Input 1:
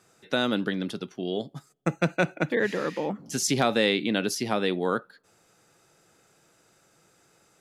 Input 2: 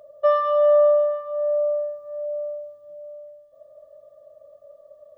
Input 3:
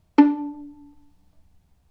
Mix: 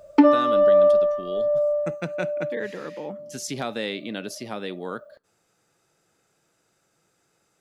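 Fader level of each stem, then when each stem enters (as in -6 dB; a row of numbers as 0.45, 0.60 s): -6.5, 0.0, -1.5 dB; 0.00, 0.00, 0.00 s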